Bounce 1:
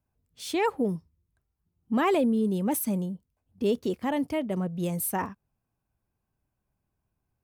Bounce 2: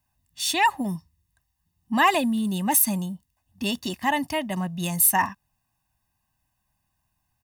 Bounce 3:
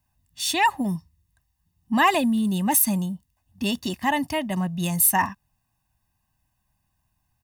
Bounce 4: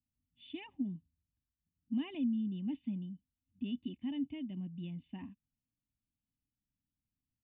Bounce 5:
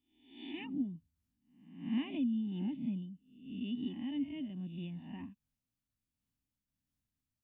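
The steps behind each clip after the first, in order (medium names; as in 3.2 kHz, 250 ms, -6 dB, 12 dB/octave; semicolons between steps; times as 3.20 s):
tilt shelf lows -6.5 dB, about 900 Hz; comb 1.1 ms, depth 95%; trim +3.5 dB
bass shelf 240 Hz +4.5 dB
cascade formant filter i; trim -7 dB
reverse spectral sustain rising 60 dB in 0.67 s; random flutter of the level, depth 55%; trim +2 dB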